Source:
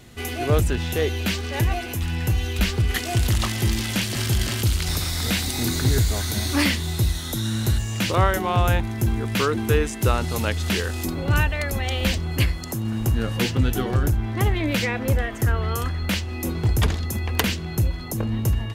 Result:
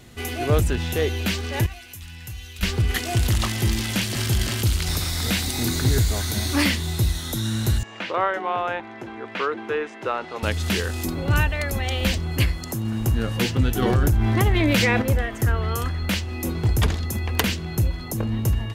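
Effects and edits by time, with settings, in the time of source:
1.66–2.63 passive tone stack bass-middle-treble 5-5-5
7.83–10.43 BPF 440–2300 Hz
13.82–15.02 fast leveller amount 70%

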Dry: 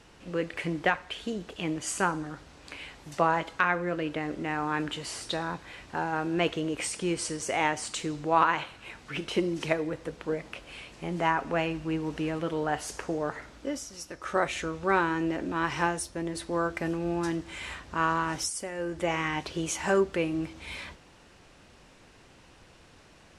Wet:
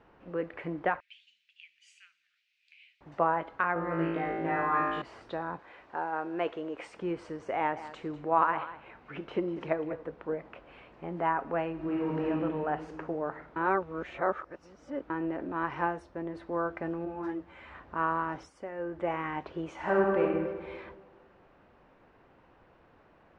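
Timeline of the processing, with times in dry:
1–3.01 elliptic high-pass 2400 Hz, stop band 60 dB
3.74–5.02 flutter echo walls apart 3.1 m, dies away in 1.1 s
5.59–6.94 tone controls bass -11 dB, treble +5 dB
7.56–10.03 echo 0.197 s -14 dB
11.73–12.27 reverb throw, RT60 2.5 s, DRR -5.5 dB
13.56–15.1 reverse
17.05–17.75 ensemble effect
19.73–20.22 reverb throw, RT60 1.6 s, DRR -2.5 dB
whole clip: LPF 1300 Hz 12 dB/oct; low shelf 270 Hz -9 dB

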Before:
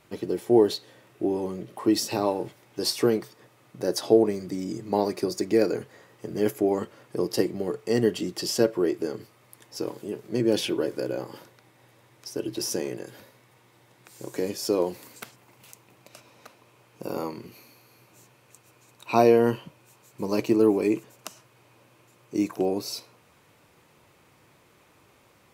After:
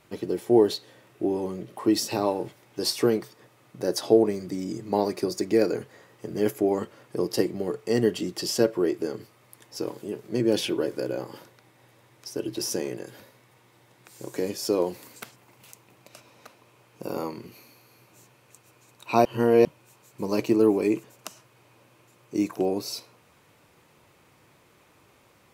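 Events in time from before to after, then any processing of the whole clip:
19.25–19.65 reverse

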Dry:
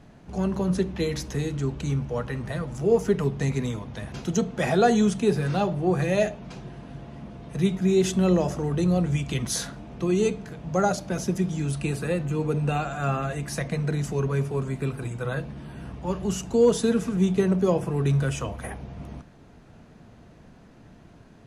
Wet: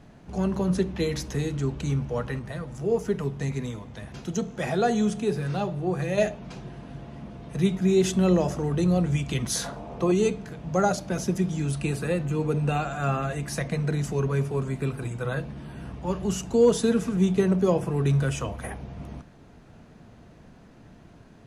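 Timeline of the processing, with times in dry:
2.39–6.18 resonator 71 Hz, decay 1.6 s, mix 40%
9.64–10.12 band shelf 700 Hz +8.5 dB

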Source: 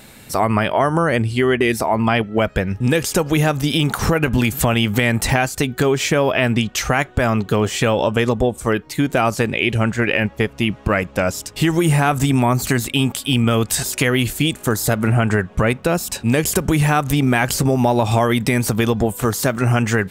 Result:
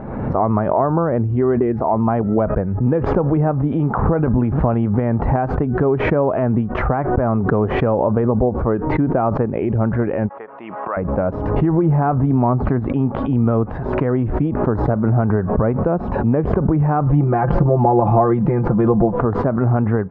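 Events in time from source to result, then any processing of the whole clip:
10.29–10.97 HPF 1000 Hz
17.06–19.2 comb 5.8 ms, depth 87%
whole clip: LPF 1100 Hz 24 dB/oct; backwards sustainer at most 41 dB/s

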